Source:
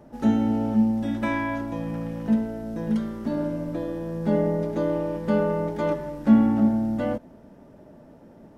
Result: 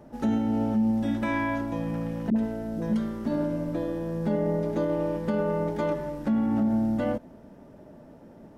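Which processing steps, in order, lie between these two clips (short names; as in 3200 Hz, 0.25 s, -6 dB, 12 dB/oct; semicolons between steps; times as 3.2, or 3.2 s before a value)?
limiter -18 dBFS, peak gain reduction 11 dB; 2.3–2.93 dispersion highs, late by 60 ms, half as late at 450 Hz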